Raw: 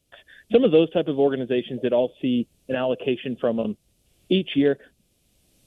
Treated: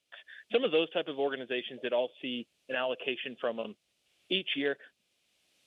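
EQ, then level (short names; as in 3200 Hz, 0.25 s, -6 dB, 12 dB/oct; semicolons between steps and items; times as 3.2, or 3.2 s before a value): band-pass 2200 Hz, Q 0.75; 0.0 dB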